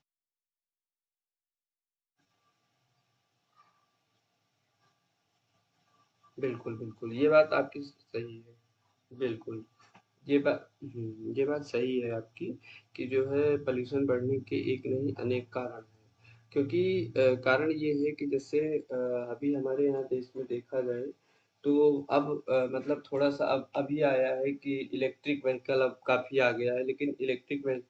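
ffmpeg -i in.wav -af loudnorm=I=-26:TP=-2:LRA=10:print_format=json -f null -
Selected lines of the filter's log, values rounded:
"input_i" : "-30.9",
"input_tp" : "-10.0",
"input_lra" : "3.8",
"input_thresh" : "-41.5",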